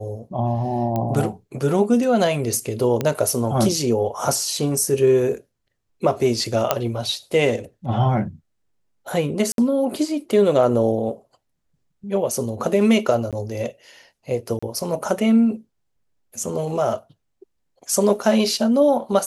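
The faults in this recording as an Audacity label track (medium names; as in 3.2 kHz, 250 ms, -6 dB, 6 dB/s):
0.960000	0.960000	pop -12 dBFS
3.010000	3.010000	pop -9 dBFS
6.710000	6.710000	pop -2 dBFS
9.520000	9.580000	dropout 62 ms
13.310000	13.330000	dropout 17 ms
14.590000	14.620000	dropout 35 ms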